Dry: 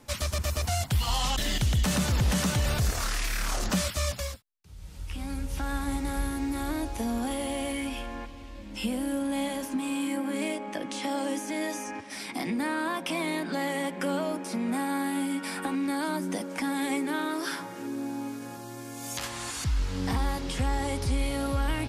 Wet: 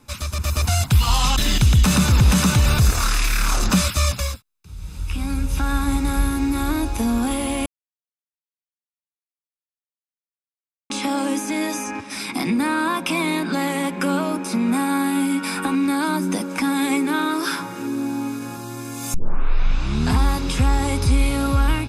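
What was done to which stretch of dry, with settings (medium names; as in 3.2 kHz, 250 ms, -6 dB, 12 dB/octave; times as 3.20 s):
7.66–10.90 s: mute
19.14 s: tape start 1.05 s
whole clip: comb 0.8 ms, depth 41%; level rider gain up to 8 dB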